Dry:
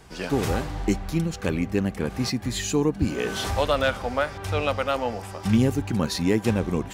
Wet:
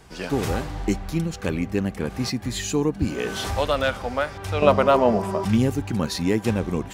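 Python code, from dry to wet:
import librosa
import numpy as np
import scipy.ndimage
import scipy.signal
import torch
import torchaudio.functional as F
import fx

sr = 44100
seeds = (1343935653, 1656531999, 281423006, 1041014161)

y = fx.small_body(x, sr, hz=(200.0, 380.0, 610.0, 970.0), ring_ms=35, db=16, at=(4.62, 5.45))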